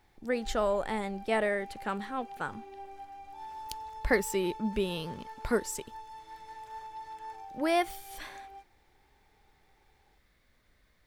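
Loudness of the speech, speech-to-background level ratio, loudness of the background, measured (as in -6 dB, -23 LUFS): -32.5 LUFS, 14.0 dB, -46.5 LUFS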